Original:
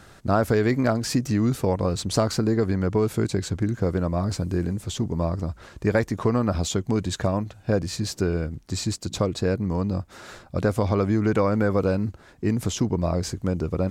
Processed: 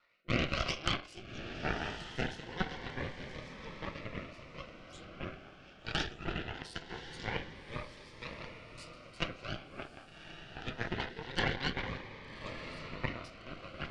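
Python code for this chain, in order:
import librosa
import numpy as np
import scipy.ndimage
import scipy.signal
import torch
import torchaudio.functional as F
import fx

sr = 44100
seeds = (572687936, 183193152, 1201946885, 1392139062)

y = fx.pitch_ramps(x, sr, semitones=9.5, every_ms=154)
y = scipy.signal.sosfilt(scipy.signal.butter(2, 1200.0, 'highpass', fs=sr, output='sos'), y)
y = fx.notch(y, sr, hz=1700.0, q=12.0)
y = fx.room_shoebox(y, sr, seeds[0], volume_m3=68.0, walls='mixed', distance_m=0.86)
y = fx.over_compress(y, sr, threshold_db=-25.0, ratio=-1.0)
y = scipy.signal.sosfilt(scipy.signal.bessel(8, 2500.0, 'lowpass', norm='mag', fs=sr, output='sos'), y)
y = fx.cheby_harmonics(y, sr, harmonics=(3, 8), levels_db=(-11, -17), full_scale_db=-7.0)
y = fx.rotary_switch(y, sr, hz=1.0, then_hz=5.0, switch_at_s=6.85)
y = fx.echo_diffused(y, sr, ms=1166, feedback_pct=43, wet_db=-10)
y = fx.notch_cascade(y, sr, direction='rising', hz=0.23)
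y = y * 10.0 ** (6.0 / 20.0)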